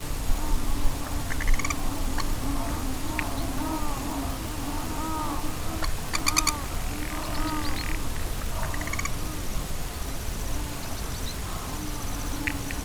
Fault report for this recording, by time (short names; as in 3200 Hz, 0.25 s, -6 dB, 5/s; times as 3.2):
crackle 310/s -30 dBFS